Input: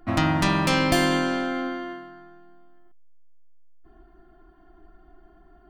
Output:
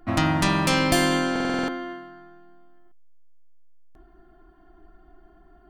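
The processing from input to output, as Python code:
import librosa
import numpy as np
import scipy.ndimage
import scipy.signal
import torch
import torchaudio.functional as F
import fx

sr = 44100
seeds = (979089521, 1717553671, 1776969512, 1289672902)

y = fx.dynamic_eq(x, sr, hz=9800.0, q=0.7, threshold_db=-45.0, ratio=4.0, max_db=5)
y = fx.buffer_glitch(y, sr, at_s=(1.31, 3.58), block=2048, repeats=7)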